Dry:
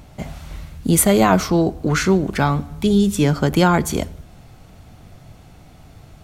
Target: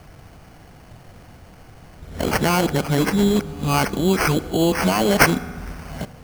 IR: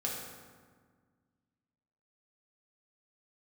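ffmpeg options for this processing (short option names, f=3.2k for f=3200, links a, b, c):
-filter_complex "[0:a]areverse,alimiter=limit=-9dB:level=0:latency=1:release=215,bass=f=250:g=-3,treble=f=4k:g=7,acrusher=samples=12:mix=1:aa=0.000001,asplit=2[a][b];[1:a]atrim=start_sample=2205[c];[b][c]afir=irnorm=-1:irlink=0,volume=-16dB[d];[a][d]amix=inputs=2:normalize=0"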